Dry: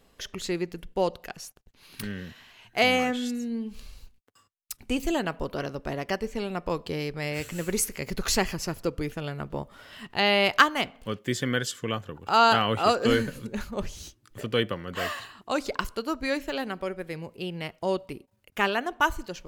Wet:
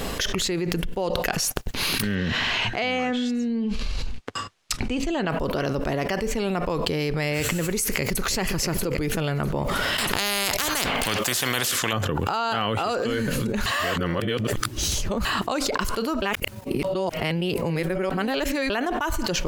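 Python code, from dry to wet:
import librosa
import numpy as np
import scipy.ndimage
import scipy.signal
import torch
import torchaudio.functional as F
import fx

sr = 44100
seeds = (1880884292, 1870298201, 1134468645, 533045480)

y = fx.lowpass(x, sr, hz=5300.0, slope=12, at=(2.15, 5.3))
y = fx.echo_throw(y, sr, start_s=7.83, length_s=0.41, ms=320, feedback_pct=55, wet_db=-6.5)
y = fx.spectral_comp(y, sr, ratio=4.0, at=(9.98, 11.93))
y = fx.edit(y, sr, fx.reverse_span(start_s=13.66, length_s=1.59),
    fx.reverse_span(start_s=16.22, length_s=2.48), tone=tone)
y = fx.env_flatten(y, sr, amount_pct=100)
y = F.gain(torch.from_numpy(y), -8.0).numpy()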